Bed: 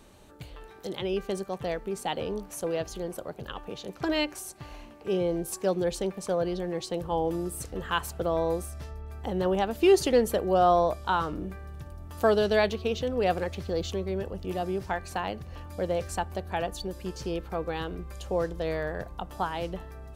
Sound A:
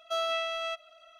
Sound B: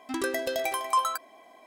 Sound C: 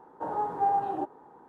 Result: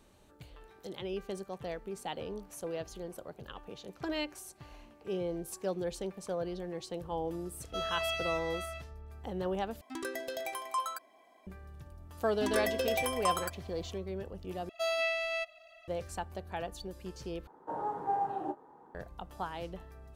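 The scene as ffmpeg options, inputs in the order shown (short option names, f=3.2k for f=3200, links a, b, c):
-filter_complex "[1:a]asplit=2[a][b];[2:a]asplit=2[c][d];[0:a]volume=-8dB[e];[a]aecho=1:1:160|272|350.4|405.3|443.7|470.6:0.794|0.631|0.501|0.398|0.316|0.251[f];[d]aecho=1:1:4.2:0.7[g];[b]aecho=1:1:1.1:0.83[h];[3:a]asplit=2[i][j];[j]adelay=27,volume=-11dB[k];[i][k]amix=inputs=2:normalize=0[l];[e]asplit=4[m][n][o][p];[m]atrim=end=9.814[q];[c]atrim=end=1.66,asetpts=PTS-STARTPTS,volume=-9dB[r];[n]atrim=start=11.466:end=14.694[s];[h]atrim=end=1.19,asetpts=PTS-STARTPTS,volume=-1dB[t];[o]atrim=start=15.876:end=17.474[u];[l]atrim=end=1.48,asetpts=PTS-STARTPTS,volume=-4.5dB[v];[p]atrim=start=18.946[w];[f]atrim=end=1.19,asetpts=PTS-STARTPTS,volume=-6dB,afade=t=in:d=0.004:c=hsin,afade=t=out:st=1.186:d=0.004:c=hsin,adelay=7630[x];[g]atrim=end=1.66,asetpts=PTS-STARTPTS,volume=-4.5dB,afade=t=in:d=0.004:c=hsin,afade=t=out:st=1.656:d=0.004:c=hsin,adelay=12320[y];[q][r]acrossfade=d=0.004:c1=hsin:c2=hsin[z];[z][s]acrossfade=d=0.004:c1=hsin:c2=hsin[aa];[aa][t]acrossfade=d=0.004:c1=hsin:c2=hsin[ab];[ab][u]acrossfade=d=0.004:c1=hsin:c2=hsin[ac];[ac][v]acrossfade=d=0.004:c1=hsin:c2=hsin[ad];[ad][w]acrossfade=d=0.004:c1=hsin:c2=hsin[ae];[ae][x][y]amix=inputs=3:normalize=0"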